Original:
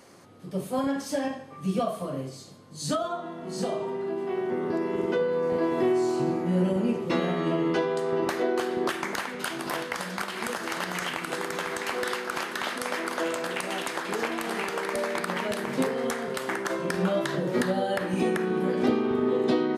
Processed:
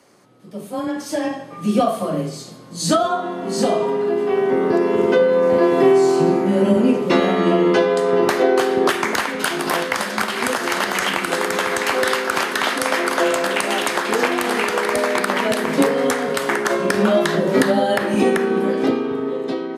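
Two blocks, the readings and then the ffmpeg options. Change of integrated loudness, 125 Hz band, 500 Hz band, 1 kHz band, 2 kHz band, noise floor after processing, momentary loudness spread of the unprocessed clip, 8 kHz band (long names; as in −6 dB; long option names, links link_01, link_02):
+10.0 dB, +5.5 dB, +10.5 dB, +10.5 dB, +10.5 dB, −36 dBFS, 7 LU, +10.5 dB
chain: -af "dynaudnorm=framelen=140:gausssize=17:maxgain=14dB,afreqshift=20,bandreject=frequency=201.9:width_type=h:width=4,bandreject=frequency=403.8:width_type=h:width=4,bandreject=frequency=605.7:width_type=h:width=4,bandreject=frequency=807.6:width_type=h:width=4,bandreject=frequency=1009.5:width_type=h:width=4,bandreject=frequency=1211.4:width_type=h:width=4,bandreject=frequency=1413.3:width_type=h:width=4,bandreject=frequency=1615.2:width_type=h:width=4,bandreject=frequency=1817.1:width_type=h:width=4,bandreject=frequency=2019:width_type=h:width=4,bandreject=frequency=2220.9:width_type=h:width=4,bandreject=frequency=2422.8:width_type=h:width=4,bandreject=frequency=2624.7:width_type=h:width=4,bandreject=frequency=2826.6:width_type=h:width=4,bandreject=frequency=3028.5:width_type=h:width=4,bandreject=frequency=3230.4:width_type=h:width=4,bandreject=frequency=3432.3:width_type=h:width=4,bandreject=frequency=3634.2:width_type=h:width=4,bandreject=frequency=3836.1:width_type=h:width=4,bandreject=frequency=4038:width_type=h:width=4,bandreject=frequency=4239.9:width_type=h:width=4,bandreject=frequency=4441.8:width_type=h:width=4,bandreject=frequency=4643.7:width_type=h:width=4,bandreject=frequency=4845.6:width_type=h:width=4,bandreject=frequency=5047.5:width_type=h:width=4,bandreject=frequency=5249.4:width_type=h:width=4,bandreject=frequency=5451.3:width_type=h:width=4,bandreject=frequency=5653.2:width_type=h:width=4,bandreject=frequency=5855.1:width_type=h:width=4,bandreject=frequency=6057:width_type=h:width=4,bandreject=frequency=6258.9:width_type=h:width=4,volume=-1dB"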